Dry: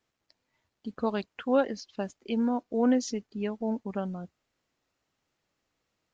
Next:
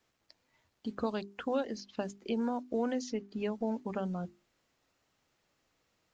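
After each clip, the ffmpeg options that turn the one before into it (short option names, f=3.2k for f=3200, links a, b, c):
-filter_complex "[0:a]acrossover=split=480|1300|4000[a][b][c][d];[a]acompressor=threshold=-38dB:ratio=4[e];[b]acompressor=threshold=-42dB:ratio=4[f];[c]acompressor=threshold=-54dB:ratio=4[g];[d]acompressor=threshold=-55dB:ratio=4[h];[e][f][g][h]amix=inputs=4:normalize=0,bandreject=f=50:t=h:w=6,bandreject=f=100:t=h:w=6,bandreject=f=150:t=h:w=6,bandreject=f=200:t=h:w=6,bandreject=f=250:t=h:w=6,bandreject=f=300:t=h:w=6,bandreject=f=350:t=h:w=6,bandreject=f=400:t=h:w=6,volume=4dB"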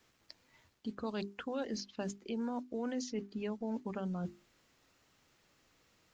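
-af "equalizer=f=680:w=1.4:g=-3.5,areverse,acompressor=threshold=-43dB:ratio=4,areverse,volume=6.5dB"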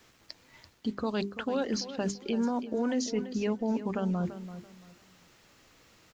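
-filter_complex "[0:a]asplit=2[a][b];[b]alimiter=level_in=10dB:limit=-24dB:level=0:latency=1:release=224,volume=-10dB,volume=0.5dB[c];[a][c]amix=inputs=2:normalize=0,aecho=1:1:337|674|1011:0.237|0.0617|0.016,volume=3.5dB"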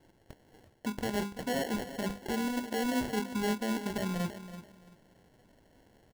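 -filter_complex "[0:a]asplit=2[a][b];[b]adelay=24,volume=-10.5dB[c];[a][c]amix=inputs=2:normalize=0,acrusher=samples=36:mix=1:aa=0.000001,volume=-2.5dB"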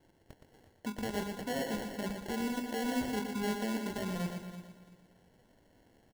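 -af "aecho=1:1:118|236|354|472:0.473|0.166|0.058|0.0203,volume=-3.5dB"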